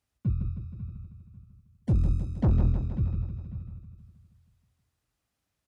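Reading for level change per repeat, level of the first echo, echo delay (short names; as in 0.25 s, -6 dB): -4.5 dB, -6.5 dB, 0.158 s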